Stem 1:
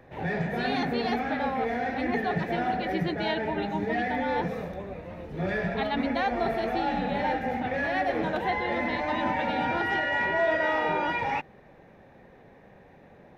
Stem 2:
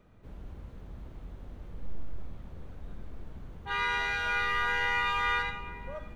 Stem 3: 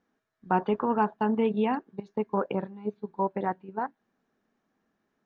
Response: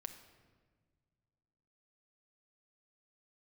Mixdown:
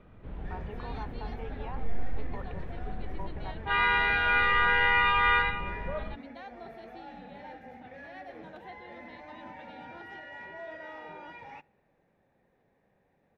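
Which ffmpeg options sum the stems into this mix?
-filter_complex "[0:a]adelay=200,volume=-19dB,asplit=2[link_01][link_02];[link_02]volume=-14dB[link_03];[1:a]lowpass=frequency=3400:width=0.5412,lowpass=frequency=3400:width=1.3066,acontrast=21,volume=0.5dB[link_04];[2:a]alimiter=limit=-18.5dB:level=0:latency=1,highpass=480,volume=-12dB[link_05];[3:a]atrim=start_sample=2205[link_06];[link_03][link_06]afir=irnorm=-1:irlink=0[link_07];[link_01][link_04][link_05][link_07]amix=inputs=4:normalize=0"

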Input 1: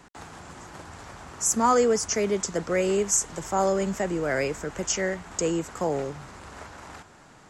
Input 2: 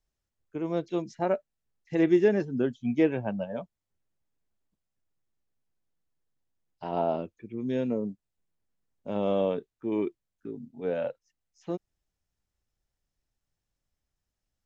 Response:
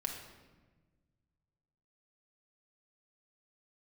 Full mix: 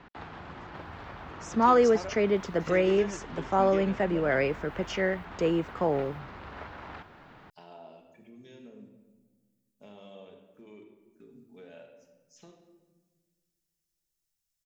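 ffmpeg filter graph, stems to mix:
-filter_complex "[0:a]lowpass=frequency=3700:width=0.5412,lowpass=frequency=3700:width=1.3066,volume=0dB,asplit=2[link_01][link_02];[1:a]acompressor=threshold=-37dB:ratio=4,crystalizer=i=9:c=0,adelay=750,volume=-4.5dB,asplit=2[link_03][link_04];[link_04]volume=-10dB[link_05];[link_02]apad=whole_len=679297[link_06];[link_03][link_06]sidechaingate=range=-33dB:threshold=-37dB:ratio=16:detection=peak[link_07];[2:a]atrim=start_sample=2205[link_08];[link_05][link_08]afir=irnorm=-1:irlink=0[link_09];[link_01][link_07][link_09]amix=inputs=3:normalize=0"

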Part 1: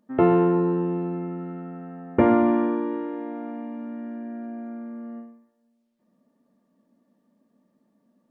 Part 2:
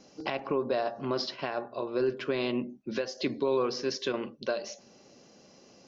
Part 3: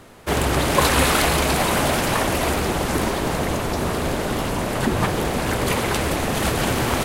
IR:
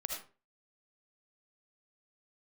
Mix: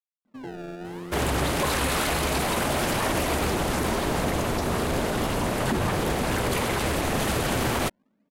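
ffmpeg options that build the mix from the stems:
-filter_complex "[0:a]alimiter=limit=-17dB:level=0:latency=1,acrusher=samples=24:mix=1:aa=0.000001:lfo=1:lforange=38.4:lforate=0.57,adelay=250,volume=-2.5dB[link_01];[2:a]adelay=850,volume=-4dB,asplit=2[link_02][link_03];[link_03]volume=-11dB[link_04];[link_01]lowpass=frequency=1600:poles=1,acompressor=threshold=-42dB:ratio=2,volume=0dB[link_05];[3:a]atrim=start_sample=2205[link_06];[link_04][link_06]afir=irnorm=-1:irlink=0[link_07];[link_02][link_05][link_07]amix=inputs=3:normalize=0,alimiter=limit=-16dB:level=0:latency=1:release=23"

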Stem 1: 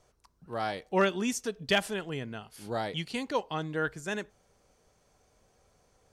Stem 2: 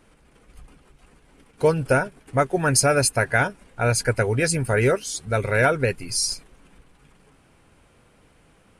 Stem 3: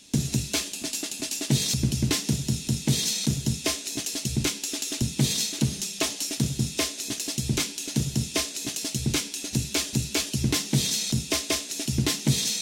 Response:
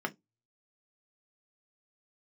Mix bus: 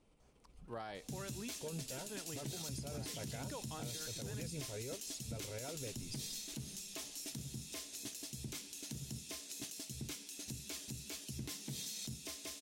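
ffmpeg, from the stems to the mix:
-filter_complex "[0:a]acompressor=threshold=-34dB:ratio=6,adelay=200,volume=-5.5dB[link_01];[1:a]lowpass=8700,equalizer=frequency=1600:width=2:gain=-13,volume=-13.5dB[link_02];[2:a]highshelf=frequency=12000:gain=11.5,adelay=950,volume=-14dB[link_03];[link_01][link_02]amix=inputs=2:normalize=0,alimiter=level_in=11dB:limit=-24dB:level=0:latency=1:release=25,volume=-11dB,volume=0dB[link_04];[link_03][link_04]amix=inputs=2:normalize=0,alimiter=level_in=10dB:limit=-24dB:level=0:latency=1:release=171,volume=-10dB"

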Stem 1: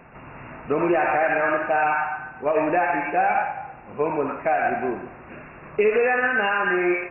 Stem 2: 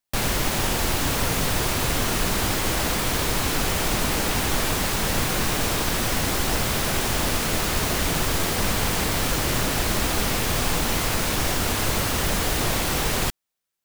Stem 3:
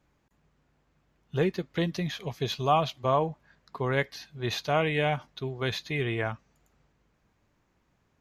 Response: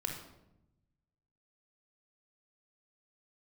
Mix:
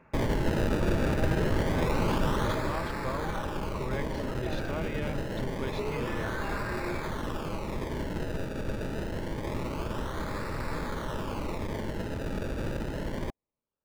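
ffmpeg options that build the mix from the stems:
-filter_complex "[0:a]volume=-10dB[link_01];[1:a]acrusher=samples=28:mix=1:aa=0.000001:lfo=1:lforange=28:lforate=0.26,volume=-3dB,afade=type=out:start_time=2.27:duration=0.56:silence=0.473151[link_02];[2:a]volume=-0.5dB[link_03];[link_01][link_03]amix=inputs=2:normalize=0,acompressor=threshold=-39dB:ratio=2,volume=0dB[link_04];[link_02][link_04]amix=inputs=2:normalize=0,asuperstop=centerf=730:order=4:qfactor=7.2,highshelf=frequency=4000:gain=-10"

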